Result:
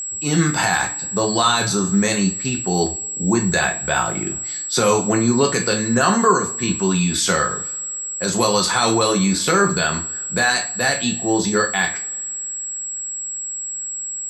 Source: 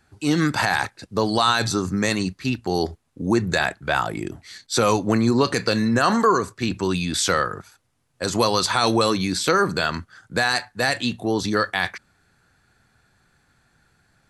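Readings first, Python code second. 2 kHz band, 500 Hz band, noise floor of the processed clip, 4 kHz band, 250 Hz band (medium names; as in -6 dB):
+3.0 dB, +2.5 dB, -28 dBFS, +2.5 dB, +2.5 dB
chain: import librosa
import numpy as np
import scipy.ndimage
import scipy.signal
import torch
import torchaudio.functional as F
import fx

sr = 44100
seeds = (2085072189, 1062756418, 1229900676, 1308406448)

y = fx.rev_double_slope(x, sr, seeds[0], early_s=0.34, late_s=2.3, knee_db=-27, drr_db=2.0)
y = y + 10.0 ** (-25.0 / 20.0) * np.sin(2.0 * np.pi * 7700.0 * np.arange(len(y)) / sr)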